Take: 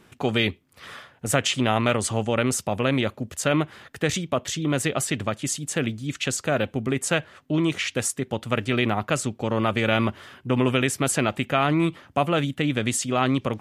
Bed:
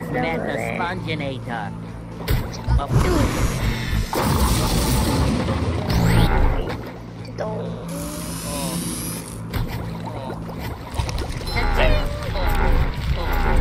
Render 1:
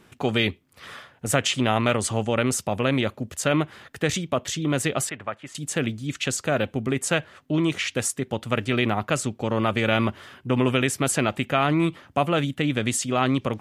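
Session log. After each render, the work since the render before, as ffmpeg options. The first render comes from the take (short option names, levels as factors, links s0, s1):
-filter_complex "[0:a]asettb=1/sr,asplit=3[s0][s1][s2];[s0]atrim=end=5.094[s3];[s1]atrim=start=5.09:end=5.55,asetpts=PTS-STARTPTS,afade=t=in:d=0.004:c=qsin,afade=t=out:st=0.456:d=0.004:c=qsin,acrossover=split=590 2400:gain=0.224 1 0.0794[s4][s5][s6];[s4][s5][s6]amix=inputs=3:normalize=0[s7];[s2]atrim=start=5.546[s8];[s3][s7]acrossfade=d=0.004:c1=hsin:c2=qsin[s9];[s9][s8]acrossfade=d=0.004:c1=qsin:c2=hsin"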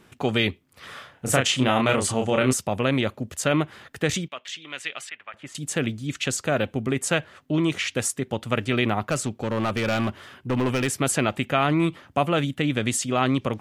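-filter_complex "[0:a]asettb=1/sr,asplit=3[s0][s1][s2];[s0]atrim=end=0.934[s3];[s1]atrim=start=0.93:end=2.53,asetpts=PTS-STARTPTS,afade=t=in:d=0.004:c=qsin,afade=t=out:st=1.596:d=0.004:c=qsin,asplit=2[s4][s5];[s5]adelay=31,volume=0.631[s6];[s4][s6]amix=inputs=2:normalize=0,atrim=end_sample=70560[s7];[s2]atrim=start=2.526[s8];[s3][s7]acrossfade=d=0.004:c1=hsin:c2=qsin[s9];[s9][s8]acrossfade=d=0.004:c1=qsin:c2=hsin,asettb=1/sr,asplit=3[s10][s11][s12];[s10]atrim=end=4.284[s13];[s11]atrim=start=4.28:end=5.34,asetpts=PTS-STARTPTS,afade=t=in:d=0.004:c=qsin,afade=t=out:st=1.056:d=0.004:c=qsin,bandpass=f=2600:t=q:w=1.4[s14];[s12]atrim=start=5.336[s15];[s13][s14]acrossfade=d=0.004:c1=hsin:c2=qsin[s16];[s16][s15]acrossfade=d=0.004:c1=qsin:c2=hsin,asettb=1/sr,asplit=3[s17][s18][s19];[s17]atrim=end=9.054[s20];[s18]atrim=start=9.05:end=10.9,asetpts=PTS-STARTPTS,afade=t=in:d=0.004:c=qsin,afade=t=out:st=1.846:d=0.004:c=qsin,asoftclip=type=hard:threshold=0.119[s21];[s19]atrim=start=10.896[s22];[s20][s21]acrossfade=d=0.004:c1=hsin:c2=qsin[s23];[s23][s22]acrossfade=d=0.004:c1=qsin:c2=hsin"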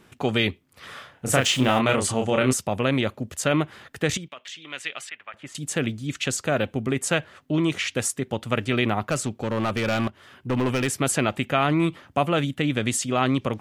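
-filter_complex "[0:a]asettb=1/sr,asplit=3[s0][s1][s2];[s0]atrim=end=1.364[s3];[s1]atrim=start=1.36:end=1.79,asetpts=PTS-STARTPTS,afade=t=in:d=0.004:c=qsin,afade=t=out:st=0.426:d=0.004:c=qsin,aeval=exprs='val(0)+0.5*0.0211*sgn(val(0))':c=same[s4];[s2]atrim=start=1.786[s5];[s3][s4]acrossfade=d=0.004:c1=hsin:c2=qsin[s6];[s6][s5]acrossfade=d=0.004:c1=qsin:c2=hsin,asettb=1/sr,asplit=3[s7][s8][s9];[s7]atrim=end=4.174[s10];[s8]atrim=start=4.17:end=4.69,asetpts=PTS-STARTPTS,afade=t=in:d=0.004:c=qsin,afade=t=out:st=0.516:d=0.004:c=qsin,acompressor=threshold=0.02:ratio=4:attack=3.2:release=140:knee=1:detection=peak[s11];[s9]atrim=start=4.686[s12];[s10][s11]acrossfade=d=0.004:c1=hsin:c2=qsin[s13];[s13][s12]acrossfade=d=0.004:c1=qsin:c2=hsin,asplit=2[s14][s15];[s14]atrim=end=10.08,asetpts=PTS-STARTPTS,afade=t=out:st=10.076:d=0.004:c=hsin:silence=0.188365[s16];[s15]atrim=start=10.08,asetpts=PTS-STARTPTS,afade=t=in:d=0.4:silence=0.188365[s17];[s16][s17]concat=n=2:v=0:a=1"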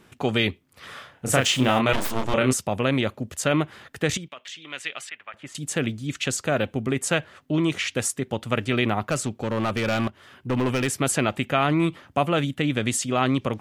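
-filter_complex "[0:a]asettb=1/sr,asplit=3[s0][s1][s2];[s0]atrim=end=1.934[s3];[s1]atrim=start=1.93:end=2.34,asetpts=PTS-STARTPTS,afade=t=in:d=0.004:c=qsin,afade=t=out:st=0.406:d=0.004:c=qsin,aeval=exprs='abs(val(0))':c=same[s4];[s2]atrim=start=2.336[s5];[s3][s4]acrossfade=d=0.004:c1=hsin:c2=qsin[s6];[s6][s5]acrossfade=d=0.004:c1=qsin:c2=hsin"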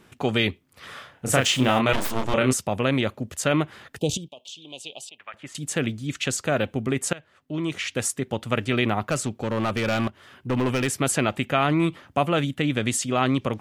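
-filter_complex "[0:a]asettb=1/sr,asplit=3[s0][s1][s2];[s0]atrim=end=3.984[s3];[s1]atrim=start=3.98:end=5.19,asetpts=PTS-STARTPTS,afade=t=in:d=0.004:c=qsin,afade=t=out:st=1.206:d=0.004:c=qsin,asuperstop=centerf=1600:order=8:qfactor=0.78[s4];[s2]atrim=start=5.186[s5];[s3][s4]acrossfade=d=0.004:c1=hsin:c2=qsin[s6];[s6][s5]acrossfade=d=0.004:c1=qsin:c2=hsin,asplit=2[s7][s8];[s7]atrim=end=7.13,asetpts=PTS-STARTPTS,afade=t=out:st=7.126:d=0.004:c=hsin:silence=0.0841395[s9];[s8]atrim=start=7.13,asetpts=PTS-STARTPTS,afade=t=in:d=0.96:silence=0.0841395[s10];[s9][s10]concat=n=2:v=0:a=1"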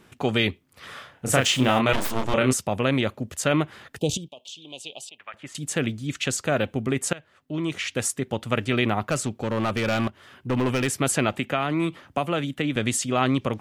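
-filter_complex "[0:a]asettb=1/sr,asplit=3[s0][s1][s2];[s0]atrim=end=11.334[s3];[s1]atrim=start=11.33:end=12.76,asetpts=PTS-STARTPTS,afade=t=in:d=0.004:c=qsin,afade=t=out:st=1.426:d=0.004:c=qsin,acrossover=split=170|3600[s4][s5][s6];[s4]acompressor=threshold=0.0126:ratio=4[s7];[s5]acompressor=threshold=0.0891:ratio=4[s8];[s6]acompressor=threshold=0.00794:ratio=4[s9];[s7][s8][s9]amix=inputs=3:normalize=0[s10];[s2]atrim=start=12.756[s11];[s3][s10]acrossfade=d=0.004:c1=hsin:c2=qsin[s12];[s12][s11]acrossfade=d=0.004:c1=qsin:c2=hsin"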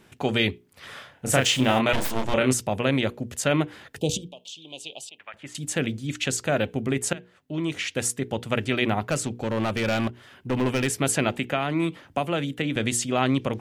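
-af "equalizer=f=1200:w=5:g=-5,bandreject=f=60:t=h:w=6,bandreject=f=120:t=h:w=6,bandreject=f=180:t=h:w=6,bandreject=f=240:t=h:w=6,bandreject=f=300:t=h:w=6,bandreject=f=360:t=h:w=6,bandreject=f=420:t=h:w=6,bandreject=f=480:t=h:w=6"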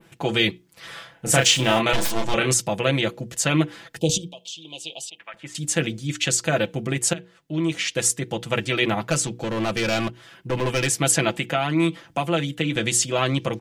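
-af "aecho=1:1:6:0.7,adynamicequalizer=threshold=0.00891:dfrequency=5900:dqfactor=0.71:tfrequency=5900:tqfactor=0.71:attack=5:release=100:ratio=0.375:range=3:mode=boostabove:tftype=bell"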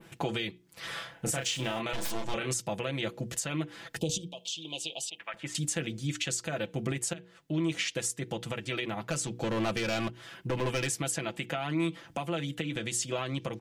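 -af "acompressor=threshold=0.0282:ratio=2,alimiter=limit=0.1:level=0:latency=1:release=360"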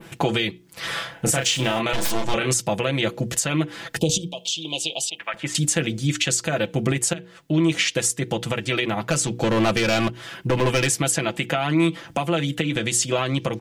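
-af "volume=3.35"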